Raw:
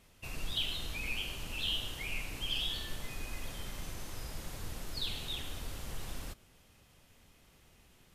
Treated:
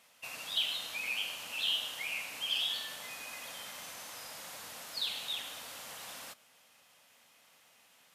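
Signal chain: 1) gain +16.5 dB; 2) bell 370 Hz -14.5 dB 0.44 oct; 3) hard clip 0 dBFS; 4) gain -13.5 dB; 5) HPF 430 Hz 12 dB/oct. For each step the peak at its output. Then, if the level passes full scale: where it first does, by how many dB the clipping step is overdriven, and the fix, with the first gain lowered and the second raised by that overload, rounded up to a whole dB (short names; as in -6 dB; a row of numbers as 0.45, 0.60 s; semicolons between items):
-5.0, -5.0, -5.0, -18.5, -20.0 dBFS; no overload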